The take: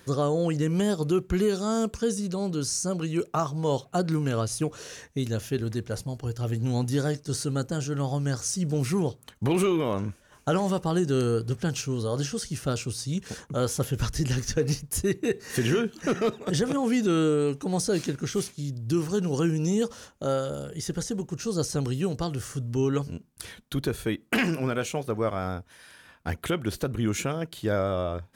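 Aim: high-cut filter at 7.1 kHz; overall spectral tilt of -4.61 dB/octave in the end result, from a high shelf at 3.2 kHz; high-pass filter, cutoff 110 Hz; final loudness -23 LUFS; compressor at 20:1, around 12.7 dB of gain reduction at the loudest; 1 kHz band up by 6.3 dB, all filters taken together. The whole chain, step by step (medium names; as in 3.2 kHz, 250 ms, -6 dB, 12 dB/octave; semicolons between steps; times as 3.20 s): high-pass 110 Hz; low-pass 7.1 kHz; peaking EQ 1 kHz +8 dB; treble shelf 3.2 kHz +5 dB; compression 20:1, threshold -30 dBFS; trim +12.5 dB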